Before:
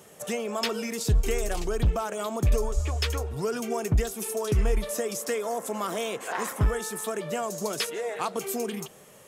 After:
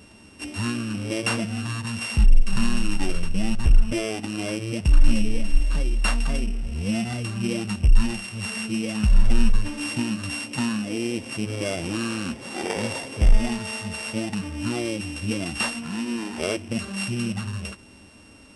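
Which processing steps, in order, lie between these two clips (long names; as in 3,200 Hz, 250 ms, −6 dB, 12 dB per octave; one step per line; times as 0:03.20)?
samples sorted by size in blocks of 8 samples
low-shelf EQ 85 Hz +8.5 dB
wrong playback speed 15 ips tape played at 7.5 ips
level +2.5 dB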